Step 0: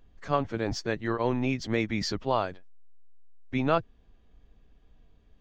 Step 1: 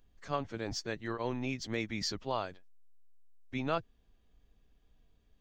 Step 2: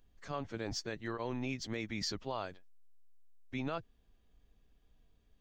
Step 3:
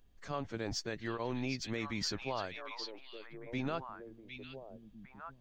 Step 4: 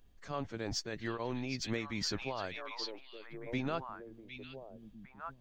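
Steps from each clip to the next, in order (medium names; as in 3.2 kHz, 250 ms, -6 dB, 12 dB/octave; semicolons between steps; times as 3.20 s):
treble shelf 3.6 kHz +9.5 dB; trim -8.5 dB
peak limiter -25.5 dBFS, peak gain reduction 6.5 dB; trim -1 dB
repeats whose band climbs or falls 757 ms, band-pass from 3.2 kHz, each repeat -1.4 oct, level -2 dB; trim +1 dB
random flutter of the level, depth 60%; trim +4.5 dB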